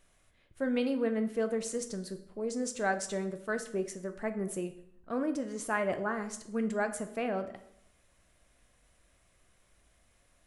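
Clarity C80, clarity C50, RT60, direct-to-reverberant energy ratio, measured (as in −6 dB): 14.5 dB, 12.0 dB, 0.75 s, 7.5 dB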